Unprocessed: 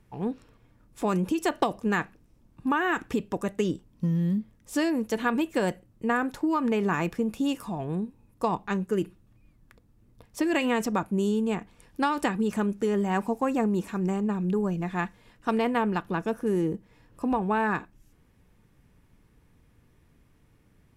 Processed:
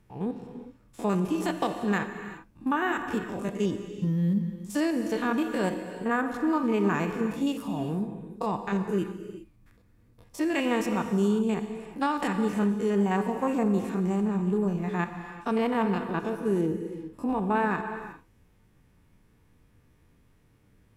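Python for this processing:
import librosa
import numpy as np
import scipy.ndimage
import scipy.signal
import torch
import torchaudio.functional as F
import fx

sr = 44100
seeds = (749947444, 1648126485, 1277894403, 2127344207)

y = fx.spec_steps(x, sr, hold_ms=50)
y = fx.rev_gated(y, sr, seeds[0], gate_ms=420, shape='flat', drr_db=7.0)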